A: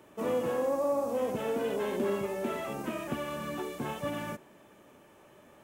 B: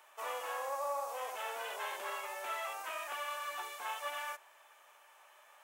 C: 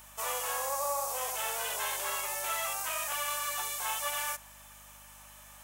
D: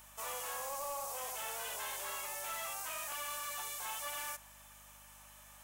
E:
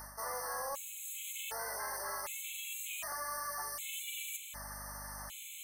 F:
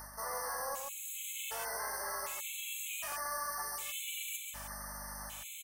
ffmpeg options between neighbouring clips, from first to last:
-af "highpass=f=790:w=0.5412,highpass=f=790:w=1.3066,volume=1.12"
-af "bass=f=250:g=-14,treble=f=4000:g=14,aeval=exprs='val(0)+0.000708*(sin(2*PI*50*n/s)+sin(2*PI*2*50*n/s)/2+sin(2*PI*3*50*n/s)/3+sin(2*PI*4*50*n/s)/4+sin(2*PI*5*50*n/s)/5)':c=same,volume=1.5"
-af "asoftclip=type=tanh:threshold=0.0266,volume=0.596"
-af "areverse,acompressor=threshold=0.00251:ratio=5,areverse,afftfilt=real='re*gt(sin(2*PI*0.66*pts/sr)*(1-2*mod(floor(b*sr/1024/2100),2)),0)':imag='im*gt(sin(2*PI*0.66*pts/sr)*(1-2*mod(floor(b*sr/1024/2100),2)),0)':win_size=1024:overlap=0.75,volume=5.31"
-af "aecho=1:1:135:0.531"

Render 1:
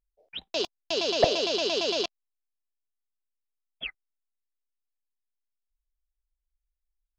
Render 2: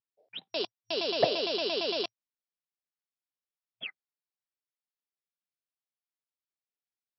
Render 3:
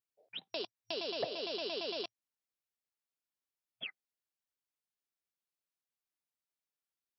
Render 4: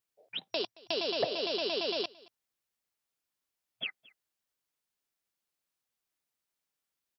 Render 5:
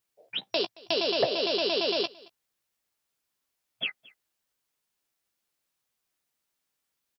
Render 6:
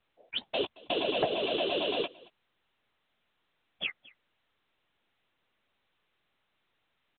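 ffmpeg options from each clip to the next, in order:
-af "afftfilt=real='re*between(b*sr/4096,110,5700)':imag='im*between(b*sr/4096,110,5700)':win_size=4096:overlap=0.75,volume=0.668"
-af "acompressor=threshold=0.0141:ratio=2.5,volume=0.841"
-af "aecho=1:1:223:0.0668,volume=2"
-filter_complex "[0:a]asplit=2[s0][s1];[s1]adelay=15,volume=0.316[s2];[s0][s2]amix=inputs=2:normalize=0,volume=1.78"
-af "afftfilt=real='hypot(re,im)*cos(2*PI*random(0))':imag='hypot(re,im)*sin(2*PI*random(1))':win_size=512:overlap=0.75,volume=1.58" -ar 8000 -c:a pcm_mulaw

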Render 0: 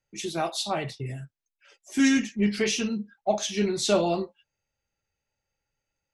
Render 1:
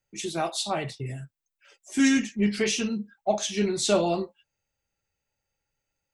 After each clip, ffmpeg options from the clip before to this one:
-af "aexciter=amount=1.6:drive=2.6:freq=7500"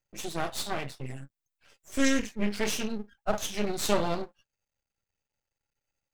-af "aeval=exprs='max(val(0),0)':c=same"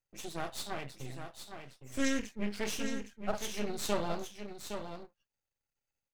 -af "aecho=1:1:813:0.398,volume=0.473"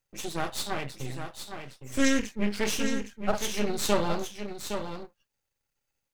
-af "bandreject=f=680:w=14,volume=2.37"

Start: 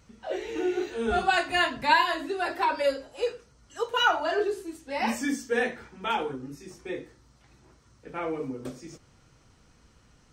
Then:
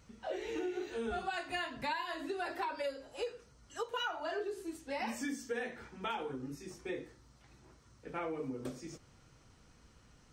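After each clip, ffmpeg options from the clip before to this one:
-af "acompressor=threshold=0.0251:ratio=6,volume=0.708"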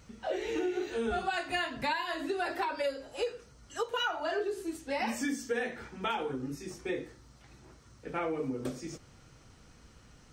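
-af "equalizer=f=1000:w=6.5:g=-2.5,volume=1.88"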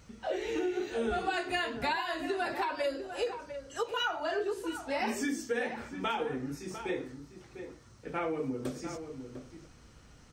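-filter_complex "[0:a]asplit=2[s0][s1];[s1]adelay=699.7,volume=0.355,highshelf=f=4000:g=-15.7[s2];[s0][s2]amix=inputs=2:normalize=0"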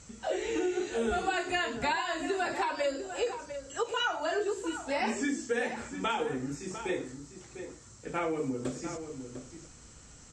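-filter_complex "[0:a]lowpass=f=7500:t=q:w=9.2,acrossover=split=4000[s0][s1];[s1]acompressor=threshold=0.00355:ratio=4:attack=1:release=60[s2];[s0][s2]amix=inputs=2:normalize=0,volume=1.19"

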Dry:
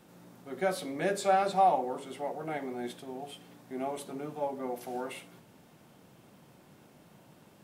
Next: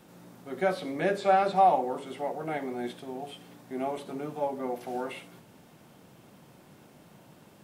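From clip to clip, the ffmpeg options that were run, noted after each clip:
-filter_complex "[0:a]acrossover=split=4200[s0][s1];[s1]acompressor=threshold=0.00141:ratio=4:attack=1:release=60[s2];[s0][s2]amix=inputs=2:normalize=0,volume=1.41"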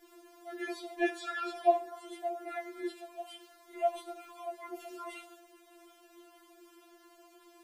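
-af "afftfilt=real='re*4*eq(mod(b,16),0)':imag='im*4*eq(mod(b,16),0)':win_size=2048:overlap=0.75"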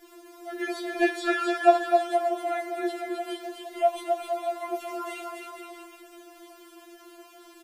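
-af "aecho=1:1:260|468|634.4|767.5|874:0.631|0.398|0.251|0.158|0.1,volume=2.24"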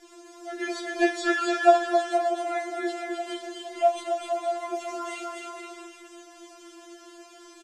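-af "lowpass=f=6900:t=q:w=2,aecho=1:1:32.07|247.8:0.316|0.355"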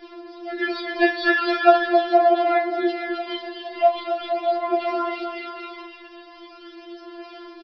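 -af "aphaser=in_gain=1:out_gain=1:delay=1.1:decay=0.4:speed=0.41:type=sinusoidal,aresample=11025,aresample=44100,volume=1.88"

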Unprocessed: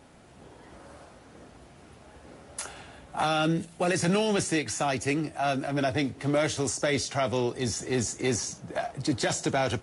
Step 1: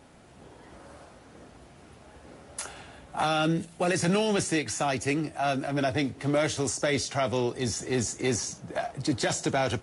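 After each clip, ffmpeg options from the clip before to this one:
-af anull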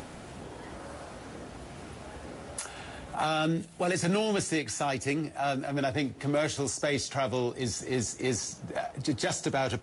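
-af "acompressor=mode=upward:threshold=0.0316:ratio=2.5,volume=0.75"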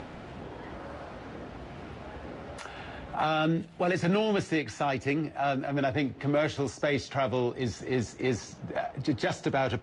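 -af "lowpass=3400,volume=1.19"

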